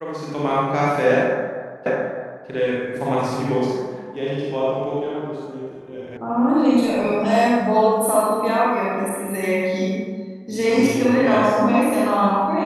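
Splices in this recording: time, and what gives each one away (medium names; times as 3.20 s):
1.86 s: repeat of the last 0.61 s
6.17 s: sound stops dead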